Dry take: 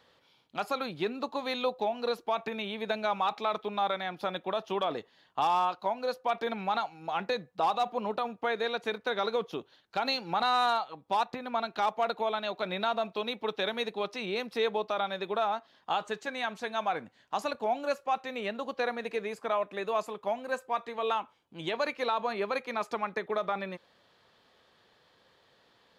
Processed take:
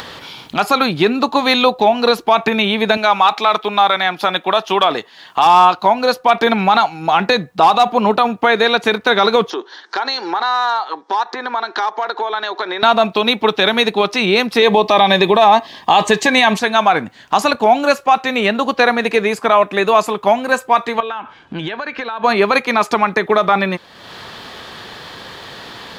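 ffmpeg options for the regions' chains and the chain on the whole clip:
-filter_complex "[0:a]asettb=1/sr,asplit=3[a][b][c];[a]atrim=end=2.974[d];[b]atrim=start=2.97:end=5.46,asetpts=PTS-STARTPTS,afade=t=in:d=0.004:c=qsin,afade=t=out:st=2.486:d=0.004:c=qsin,highpass=95,lowshelf=f=390:g=-10[e];[c]atrim=start=5.456[f];[d][e]acrossfade=d=0.004:c1=hsin:c2=qsin[g];[g][f]acrossfade=d=0.004:c1=qsin:c2=hsin,asettb=1/sr,asplit=3[h][i][j];[h]atrim=end=9.504[k];[i]atrim=start=9.5:end=12.83,asetpts=PTS-STARTPTS,afade=t=in:d=0.004:c=qsin,afade=t=out:st=3.326:d=0.004:c=qsin,acompressor=threshold=-38dB:ratio=4:attack=3.2:release=140:knee=1:detection=peak,highpass=f=340:w=0.5412,highpass=f=340:w=1.3066,equalizer=f=370:t=q:w=4:g=5,equalizer=f=620:t=q:w=4:g=-5,equalizer=f=970:t=q:w=4:g=5,equalizer=f=1.7k:t=q:w=4:g=7,equalizer=f=2.6k:t=q:w=4:g=-9,equalizer=f=5.6k:t=q:w=4:g=5,lowpass=f=6.4k:w=0.5412,lowpass=f=6.4k:w=1.3066[l];[j]atrim=start=12.826[m];[k][l]acrossfade=d=0.004:c1=hsin:c2=qsin[n];[n][m]acrossfade=d=0.004:c1=qsin:c2=hsin,asettb=1/sr,asplit=3[o][p][q];[o]atrim=end=14.624[r];[p]atrim=start=14.62:end=16.59,asetpts=PTS-STARTPTS,afade=t=in:d=0.004:c=qsin,afade=t=out:st=1.966:d=0.004:c=qsin,asuperstop=centerf=1400:order=4:qfactor=4,acontrast=82[s];[q]atrim=start=16.586[t];[r][s]acrossfade=d=0.004:c1=hsin:c2=qsin[u];[u][t]acrossfade=d=0.004:c1=qsin:c2=hsin,asettb=1/sr,asplit=3[v][w][x];[v]atrim=end=21.004[y];[w]atrim=start=21:end=22.24,asetpts=PTS-STARTPTS,afade=t=in:d=0.004:c=qsin,afade=t=out:st=1.236:d=0.004:c=qsin,lowpass=4.1k,equalizer=f=1.6k:w=7.4:g=12.5,acompressor=threshold=-40dB:ratio=12:attack=3.2:release=140:knee=1:detection=peak[z];[x]atrim=start=22.236[aa];[y][z]acrossfade=d=0.004:c1=hsin:c2=qsin[ab];[ab][aa]acrossfade=d=0.004:c1=qsin:c2=hsin,equalizer=f=530:w=2.5:g=-5.5,acompressor=mode=upward:threshold=-43dB:ratio=2.5,alimiter=level_in=22dB:limit=-1dB:release=50:level=0:latency=1,volume=-1dB"

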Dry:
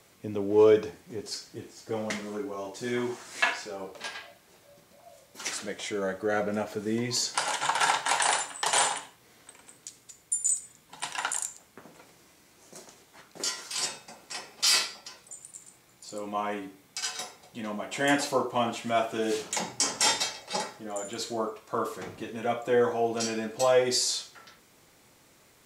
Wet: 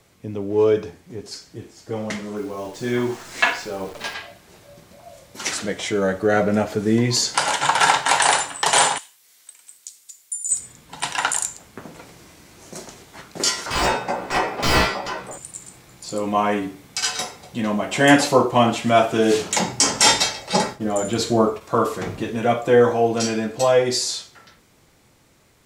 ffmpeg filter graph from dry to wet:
-filter_complex "[0:a]asettb=1/sr,asplit=3[a][b][c];[a]atrim=end=2.364[d];[b]atrim=start=2.36:end=4.14,asetpts=PTS-STARTPTS,afade=t=in:d=0.004:c=qsin,afade=t=out:st=1.776:d=0.004:c=qsin,highshelf=f=9.4k:g=-5,acrusher=bits=9:dc=4:mix=0:aa=0.000001[e];[c]atrim=start=4.136[f];[d][e]acrossfade=d=0.004:c1=hsin:c2=qsin[g];[g][f]acrossfade=d=0.004:c1=qsin:c2=hsin,asettb=1/sr,asplit=3[h][i][j];[h]atrim=end=8.984[k];[i]atrim=start=8.98:end=10.51,asetpts=PTS-STARTPTS,afade=t=in:d=0.004:c=qsin,afade=t=out:st=1.526:d=0.004:c=qsin,aderivative,acompressor=threshold=-37dB:ratio=2:attack=3.2:release=140:knee=1:detection=peak[l];[j]atrim=start=10.506[m];[k][l]acrossfade=d=0.004:c1=hsin:c2=qsin[n];[n][m]acrossfade=d=0.004:c1=qsin:c2=hsin,asettb=1/sr,asplit=3[o][p][q];[o]atrim=end=13.664[r];[p]atrim=start=13.66:end=15.38,asetpts=PTS-STARTPTS,afade=t=in:d=0.004:c=qsin,afade=t=out:st=1.716:d=0.004:c=qsin,asplit=2[s][t];[t]highpass=f=720:p=1,volume=24dB,asoftclip=type=tanh:threshold=-9.5dB[u];[s][u]amix=inputs=2:normalize=0,lowpass=f=1.3k:p=1,volume=-6dB,equalizer=f=5.3k:w=0.38:g=-10.5,asplit=2[v][w];[w]adelay=16,volume=-4.5dB[x];[v][x]amix=inputs=2:normalize=0,atrim=end_sample=75852[y];[q]atrim=start=15.376[z];[r][y]acrossfade=d=0.004:c1=hsin:c2=qsin[aa];[aa][z]acrossfade=d=0.004:c1=qsin:c2=hsin,asettb=1/sr,asplit=3[ab][ac][ad];[ab]atrim=end=20.524[ae];[ac]atrim=start=20.52:end=21.61,asetpts=PTS-STARTPTS,afade=t=in:d=0.004:c=qsin,afade=t=out:st=1.086:d=0.004:c=qsin,agate=range=-33dB:threshold=-45dB:ratio=3:release=100:detection=peak,lowshelf=f=390:g=6[af];[ad]atrim=start=21.606[ag];[ae][af]acrossfade=d=0.004:c1=hsin:c2=qsin[ah];[ah][ag]acrossfade=d=0.004:c1=qsin:c2=hsin,highshelf=f=9.9k:g=-4,dynaudnorm=f=270:g=21:m=11dB,lowshelf=f=150:g=10,volume=1dB"

